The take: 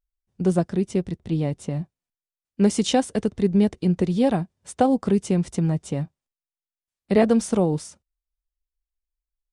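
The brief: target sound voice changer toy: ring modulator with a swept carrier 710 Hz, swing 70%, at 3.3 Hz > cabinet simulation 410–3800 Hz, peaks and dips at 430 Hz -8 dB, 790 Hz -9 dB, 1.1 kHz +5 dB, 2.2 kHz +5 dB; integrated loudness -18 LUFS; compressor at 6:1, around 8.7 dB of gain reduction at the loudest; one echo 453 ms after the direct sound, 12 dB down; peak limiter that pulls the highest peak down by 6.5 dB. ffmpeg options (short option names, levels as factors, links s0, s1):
-af "acompressor=threshold=0.0708:ratio=6,alimiter=limit=0.106:level=0:latency=1,aecho=1:1:453:0.251,aeval=exprs='val(0)*sin(2*PI*710*n/s+710*0.7/3.3*sin(2*PI*3.3*n/s))':c=same,highpass=410,equalizer=f=430:t=q:w=4:g=-8,equalizer=f=790:t=q:w=4:g=-9,equalizer=f=1100:t=q:w=4:g=5,equalizer=f=2200:t=q:w=4:g=5,lowpass=f=3800:w=0.5412,lowpass=f=3800:w=1.3066,volume=6.68"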